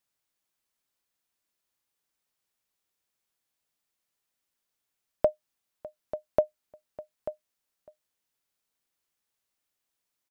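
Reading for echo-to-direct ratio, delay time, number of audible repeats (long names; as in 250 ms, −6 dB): −19.5 dB, 603 ms, 1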